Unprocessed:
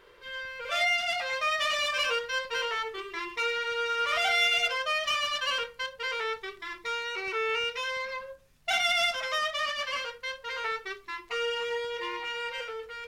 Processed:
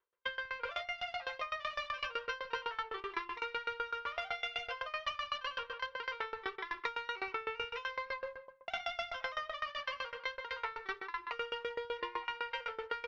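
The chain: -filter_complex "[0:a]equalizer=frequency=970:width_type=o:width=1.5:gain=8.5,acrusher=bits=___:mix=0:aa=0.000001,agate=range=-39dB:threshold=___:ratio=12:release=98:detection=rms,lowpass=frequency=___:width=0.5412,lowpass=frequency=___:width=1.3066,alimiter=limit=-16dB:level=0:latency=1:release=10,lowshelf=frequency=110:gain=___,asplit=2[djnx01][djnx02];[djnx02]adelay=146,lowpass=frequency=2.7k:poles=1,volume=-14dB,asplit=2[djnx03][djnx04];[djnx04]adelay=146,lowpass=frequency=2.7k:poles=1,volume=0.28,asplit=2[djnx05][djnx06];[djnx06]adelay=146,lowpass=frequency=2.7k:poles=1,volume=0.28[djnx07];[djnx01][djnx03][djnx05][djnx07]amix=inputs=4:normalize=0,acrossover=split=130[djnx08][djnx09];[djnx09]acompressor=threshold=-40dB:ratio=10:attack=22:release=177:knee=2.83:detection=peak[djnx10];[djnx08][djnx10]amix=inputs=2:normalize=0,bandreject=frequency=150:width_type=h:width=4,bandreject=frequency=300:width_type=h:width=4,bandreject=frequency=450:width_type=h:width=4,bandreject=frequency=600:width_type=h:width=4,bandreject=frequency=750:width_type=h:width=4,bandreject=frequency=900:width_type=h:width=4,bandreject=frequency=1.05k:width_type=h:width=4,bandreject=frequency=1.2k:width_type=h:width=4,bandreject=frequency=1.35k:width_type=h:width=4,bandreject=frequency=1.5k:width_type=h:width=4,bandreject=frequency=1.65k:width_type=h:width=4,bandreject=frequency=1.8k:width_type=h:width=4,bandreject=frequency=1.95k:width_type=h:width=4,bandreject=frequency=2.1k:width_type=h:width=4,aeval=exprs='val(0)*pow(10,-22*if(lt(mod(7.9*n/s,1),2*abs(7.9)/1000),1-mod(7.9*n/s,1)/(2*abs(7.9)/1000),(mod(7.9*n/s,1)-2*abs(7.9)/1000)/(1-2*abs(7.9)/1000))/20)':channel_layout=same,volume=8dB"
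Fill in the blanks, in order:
10, -40dB, 5.1k, 5.1k, -4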